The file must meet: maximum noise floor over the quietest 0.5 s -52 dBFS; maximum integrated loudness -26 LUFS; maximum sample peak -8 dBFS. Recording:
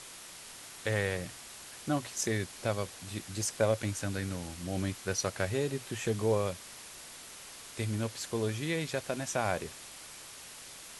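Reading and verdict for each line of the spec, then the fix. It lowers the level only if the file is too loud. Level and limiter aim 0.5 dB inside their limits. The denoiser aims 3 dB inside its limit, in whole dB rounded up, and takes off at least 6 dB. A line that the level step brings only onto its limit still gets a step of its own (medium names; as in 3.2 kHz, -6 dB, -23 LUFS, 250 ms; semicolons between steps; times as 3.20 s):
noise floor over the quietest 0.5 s -48 dBFS: fail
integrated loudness -34.0 LUFS: pass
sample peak -14.0 dBFS: pass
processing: noise reduction 7 dB, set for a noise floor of -48 dBFS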